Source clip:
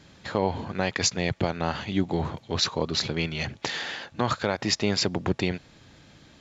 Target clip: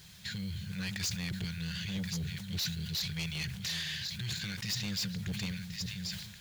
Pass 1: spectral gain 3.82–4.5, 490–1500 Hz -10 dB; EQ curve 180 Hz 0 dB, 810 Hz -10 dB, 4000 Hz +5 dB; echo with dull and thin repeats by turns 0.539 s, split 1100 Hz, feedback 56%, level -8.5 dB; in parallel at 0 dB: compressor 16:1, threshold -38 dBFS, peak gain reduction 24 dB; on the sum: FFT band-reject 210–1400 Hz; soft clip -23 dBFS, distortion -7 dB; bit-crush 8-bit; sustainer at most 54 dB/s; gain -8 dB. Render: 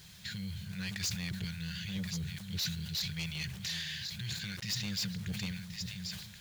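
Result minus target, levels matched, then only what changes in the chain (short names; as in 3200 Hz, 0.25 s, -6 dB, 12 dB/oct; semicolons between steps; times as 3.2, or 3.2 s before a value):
compressor: peak gain reduction +10.5 dB
change: compressor 16:1, threshold -27 dBFS, peak gain reduction 13.5 dB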